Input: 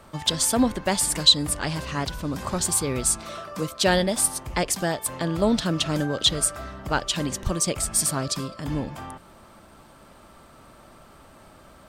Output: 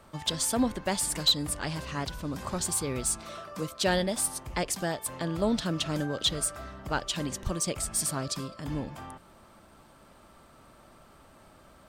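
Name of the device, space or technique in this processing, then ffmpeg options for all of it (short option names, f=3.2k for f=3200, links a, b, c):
saturation between pre-emphasis and de-emphasis: -af "highshelf=f=3.2k:g=11,asoftclip=type=tanh:threshold=-3dB,highshelf=f=3.2k:g=-11,volume=-5.5dB"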